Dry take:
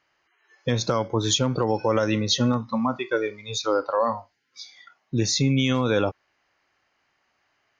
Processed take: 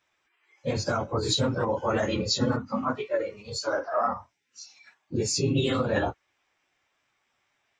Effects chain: phase scrambler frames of 50 ms; formant shift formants +3 st; gain -3.5 dB

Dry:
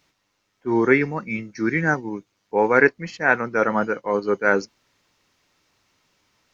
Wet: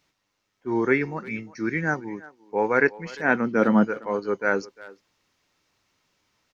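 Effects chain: 3.23–3.83 small resonant body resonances 230/3100 Hz, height 10 dB -> 14 dB, ringing for 20 ms; speakerphone echo 0.35 s, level -19 dB; gain -4.5 dB

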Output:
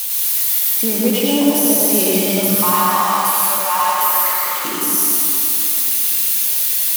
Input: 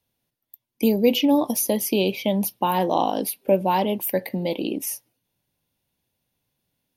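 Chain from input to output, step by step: switching spikes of -13.5 dBFS; 2.38–4.65 resonant high-pass 1200 Hz, resonance Q 9.2; reverb RT60 3.2 s, pre-delay 86 ms, DRR -6 dB; gain -3.5 dB

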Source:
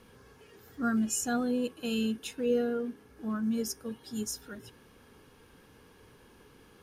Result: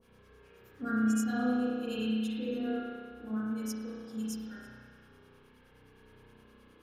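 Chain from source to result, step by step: harmonic tremolo 9.6 Hz, depth 100%, crossover 810 Hz; spring tank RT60 1.9 s, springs 32 ms, chirp 30 ms, DRR -7.5 dB; gain -5.5 dB

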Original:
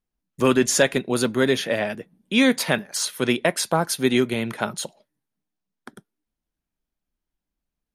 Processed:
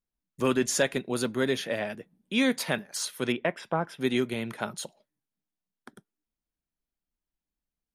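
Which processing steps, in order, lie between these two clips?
3.32–4.01 polynomial smoothing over 25 samples; gain -7 dB

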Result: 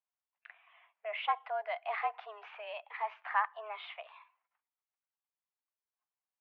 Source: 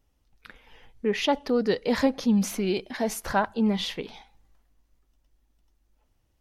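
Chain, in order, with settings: gate -58 dBFS, range -14 dB; mistuned SSB +210 Hz 530–2600 Hz; gain -5.5 dB

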